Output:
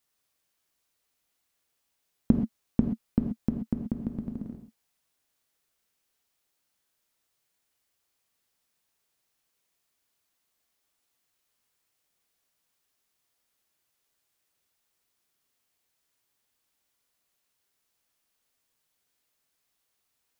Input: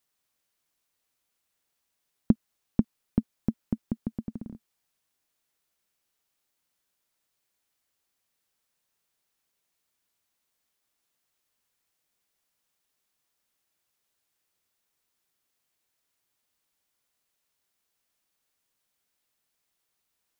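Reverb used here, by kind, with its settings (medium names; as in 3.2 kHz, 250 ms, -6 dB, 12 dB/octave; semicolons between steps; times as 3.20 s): gated-style reverb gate 150 ms flat, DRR 4 dB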